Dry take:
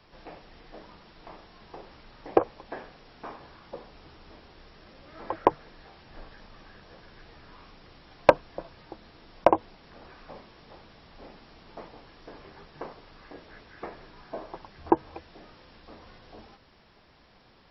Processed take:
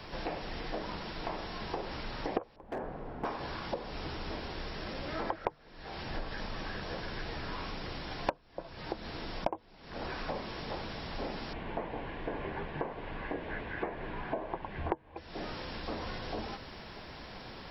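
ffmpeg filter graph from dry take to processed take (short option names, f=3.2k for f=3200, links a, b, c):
-filter_complex "[0:a]asettb=1/sr,asplit=3[a][b][c];[a]atrim=end=2.564[d];[b]atrim=start=2.56:end=3.25,asetpts=PTS-STARTPTS,afade=t=in:d=0.004:c=qsin,afade=t=out:st=0.686:d=0.004:c=qsin,lowpass=1k,asoftclip=type=hard:threshold=-36.5dB[e];[c]atrim=start=3.246[f];[d][e]acrossfade=d=0.004:c1=hsin:c2=qsin[g];[g][f]acrossfade=d=0.004:c1=qsin:c2=hsin,asettb=1/sr,asplit=3[h][i][j];[h]atrim=end=11.534[k];[i]atrim=start=11.53:end=15.17,asetpts=PTS-STARTPTS,afade=t=in:d=0.004:c=qsin,afade=t=out:st=3.636:d=0.004:c=qsin,lowpass=f=2.8k:w=0.5412,lowpass=f=2.8k:w=1.3066,bandreject=f=1.3k:w=9.3[l];[j]atrim=start=15.166[m];[k][l]acrossfade=d=0.004:c1=hsin:c2=qsin[n];[n][m]acrossfade=d=0.004:c1=qsin:c2=hsin,bandreject=f=1.2k:w=19,acompressor=threshold=-45dB:ratio=8,volume=12.5dB"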